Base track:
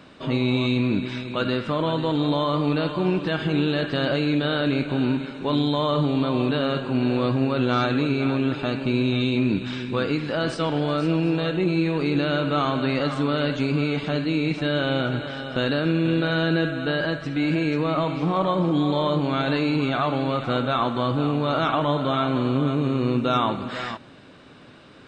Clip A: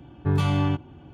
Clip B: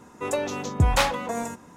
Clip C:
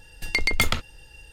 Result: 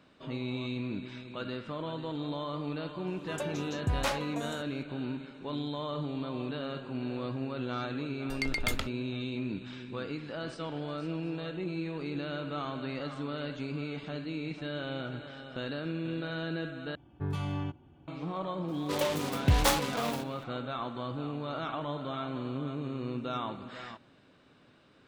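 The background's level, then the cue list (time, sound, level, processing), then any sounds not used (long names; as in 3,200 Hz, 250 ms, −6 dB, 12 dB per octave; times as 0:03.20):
base track −13.5 dB
0:03.07: mix in B −10.5 dB
0:08.07: mix in C −10 dB + noise gate −36 dBFS, range −24 dB
0:16.95: overwrite with A −11.5 dB
0:18.68: mix in B −4.5 dB + short delay modulated by noise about 2,300 Hz, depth 0.11 ms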